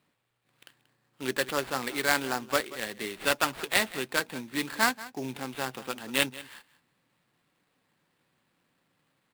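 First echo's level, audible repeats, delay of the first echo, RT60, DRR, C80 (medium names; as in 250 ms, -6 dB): -17.5 dB, 1, 183 ms, no reverb, no reverb, no reverb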